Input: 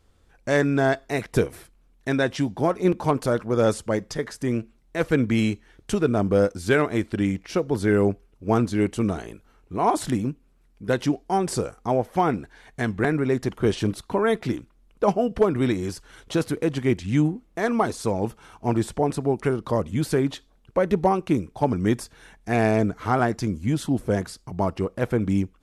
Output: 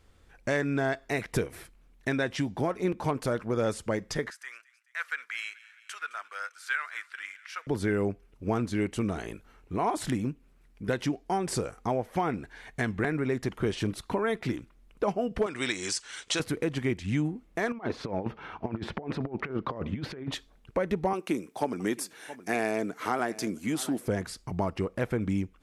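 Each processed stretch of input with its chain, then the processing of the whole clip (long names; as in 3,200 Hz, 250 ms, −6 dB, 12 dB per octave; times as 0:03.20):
0:04.30–0:07.67: four-pole ladder high-pass 1,200 Hz, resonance 50% + delay with a high-pass on its return 214 ms, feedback 61%, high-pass 1,900 Hz, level −18.5 dB
0:15.46–0:16.40: Butterworth low-pass 8,600 Hz + spectral tilt +4.5 dB per octave
0:17.72–0:20.32: high-pass filter 150 Hz 6 dB per octave + high-frequency loss of the air 300 metres + compressor whose output falls as the input rises −30 dBFS, ratio −0.5
0:21.13–0:24.08: Chebyshev high-pass filter 290 Hz + high-shelf EQ 7,000 Hz +11.5 dB + single-tap delay 669 ms −21.5 dB
whole clip: parametric band 2,100 Hz +4.5 dB 0.98 octaves; downward compressor 2.5 to 1, threshold −28 dBFS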